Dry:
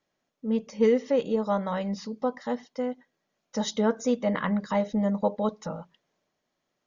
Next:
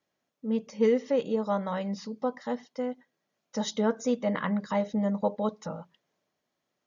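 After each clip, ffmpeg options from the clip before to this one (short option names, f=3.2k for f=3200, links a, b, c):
-af "highpass=59,volume=-2dB"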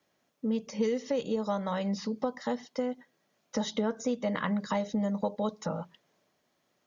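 -filter_complex "[0:a]acrossover=split=110|3800[a][b][c];[a]acompressor=threshold=-57dB:ratio=4[d];[b]acompressor=threshold=-36dB:ratio=4[e];[c]acompressor=threshold=-52dB:ratio=4[f];[d][e][f]amix=inputs=3:normalize=0,volume=7dB"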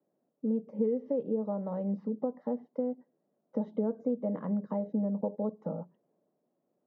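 -af "asuperpass=centerf=320:order=4:qfactor=0.68"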